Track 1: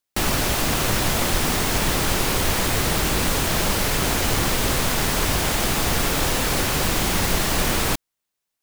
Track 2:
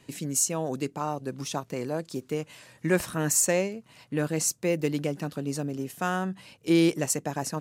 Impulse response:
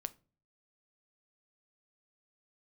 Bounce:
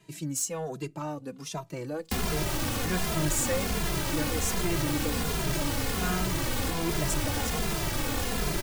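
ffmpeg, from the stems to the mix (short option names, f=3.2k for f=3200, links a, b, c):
-filter_complex "[0:a]acrossover=split=390|1300[a][b][c];[a]acompressor=threshold=-28dB:ratio=4[d];[b]acompressor=threshold=-39dB:ratio=4[e];[c]acompressor=threshold=-34dB:ratio=4[f];[d][e][f]amix=inputs=3:normalize=0,adelay=1950,volume=1.5dB,asplit=2[g][h];[h]volume=-5.5dB[i];[1:a]aecho=1:1:6.2:0.34,volume=-2.5dB,asplit=2[j][k];[k]volume=-10.5dB[l];[2:a]atrim=start_sample=2205[m];[i][l]amix=inputs=2:normalize=0[n];[n][m]afir=irnorm=-1:irlink=0[o];[g][j][o]amix=inputs=3:normalize=0,asoftclip=type=tanh:threshold=-19dB,asplit=2[p][q];[q]adelay=2.5,afreqshift=-1.3[r];[p][r]amix=inputs=2:normalize=1"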